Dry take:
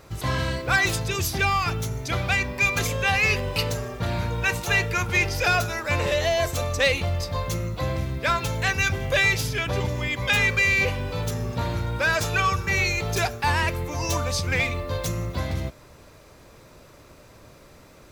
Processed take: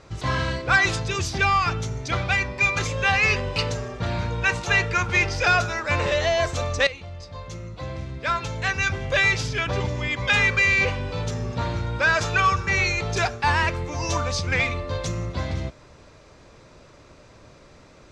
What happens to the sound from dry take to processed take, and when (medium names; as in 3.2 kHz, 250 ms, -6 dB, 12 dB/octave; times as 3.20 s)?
2.24–2.97 s: comb of notches 230 Hz
6.87–9.52 s: fade in, from -15 dB
whole clip: low-pass 7.2 kHz 24 dB/octave; dynamic bell 1.3 kHz, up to +4 dB, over -33 dBFS, Q 1.2